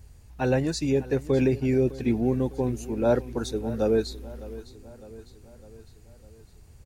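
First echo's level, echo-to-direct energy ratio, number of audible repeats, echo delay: −17.5 dB, −16.0 dB, 4, 605 ms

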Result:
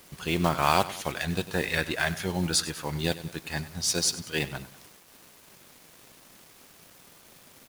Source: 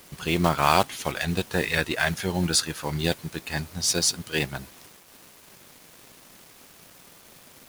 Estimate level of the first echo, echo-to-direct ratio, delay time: −16.0 dB, −15.0 dB, 97 ms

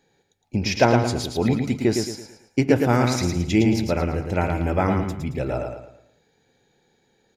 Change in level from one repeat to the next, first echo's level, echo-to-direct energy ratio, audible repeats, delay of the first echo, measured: −8.5 dB, −5.0 dB, −4.5 dB, 4, 111 ms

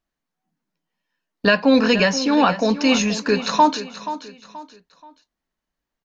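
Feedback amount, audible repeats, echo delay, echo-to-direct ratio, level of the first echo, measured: 35%, 3, 479 ms, −12.5 dB, −13.0 dB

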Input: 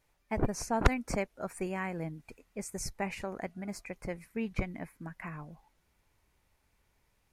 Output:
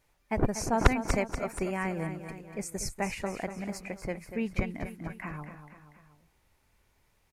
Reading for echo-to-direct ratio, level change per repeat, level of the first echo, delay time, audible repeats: −8.5 dB, −5.5 dB, −10.0 dB, 240 ms, 3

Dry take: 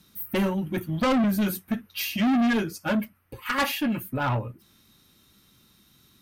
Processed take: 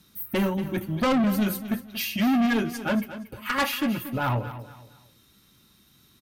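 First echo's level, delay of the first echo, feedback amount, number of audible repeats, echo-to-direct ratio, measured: −13.0 dB, 233 ms, 32%, 3, −12.5 dB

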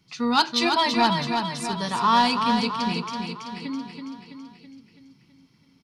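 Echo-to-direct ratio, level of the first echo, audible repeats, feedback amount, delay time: −4.0 dB, −5.5 dB, 6, 56%, 329 ms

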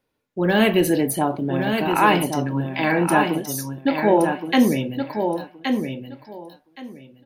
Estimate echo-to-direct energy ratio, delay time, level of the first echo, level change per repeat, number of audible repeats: −6.0 dB, 1,120 ms, −6.0 dB, −15.0 dB, 2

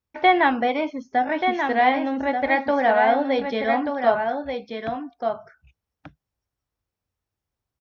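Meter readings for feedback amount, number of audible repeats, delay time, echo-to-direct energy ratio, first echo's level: repeats not evenly spaced, 1, 1,184 ms, −6.0 dB, −6.0 dB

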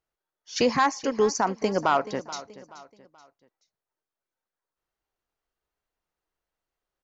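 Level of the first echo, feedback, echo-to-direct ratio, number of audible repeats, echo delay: −16.5 dB, 38%, −16.0 dB, 3, 429 ms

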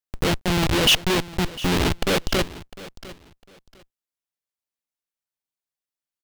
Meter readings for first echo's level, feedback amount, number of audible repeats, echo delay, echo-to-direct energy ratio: −18.0 dB, 23%, 2, 703 ms, −18.0 dB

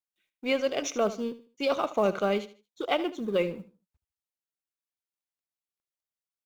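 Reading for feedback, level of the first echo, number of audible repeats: 28%, −15.0 dB, 2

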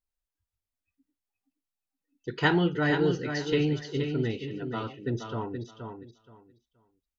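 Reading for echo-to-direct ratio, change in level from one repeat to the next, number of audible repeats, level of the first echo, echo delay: −7.0 dB, −14.0 dB, 3, −7.0 dB, 474 ms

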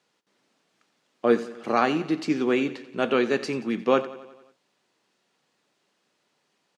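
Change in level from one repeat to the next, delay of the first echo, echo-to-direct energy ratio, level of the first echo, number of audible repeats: −4.5 dB, 89 ms, −14.5 dB, −16.5 dB, 5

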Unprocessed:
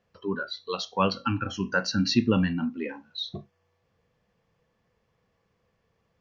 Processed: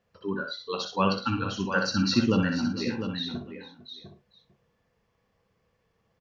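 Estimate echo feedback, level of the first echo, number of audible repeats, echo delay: repeats not evenly spaced, −5.5 dB, 7, 62 ms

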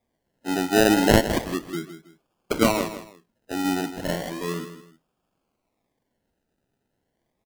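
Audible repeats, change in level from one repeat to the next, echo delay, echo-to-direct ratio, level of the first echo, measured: 2, −10.5 dB, 160 ms, −11.0 dB, −11.5 dB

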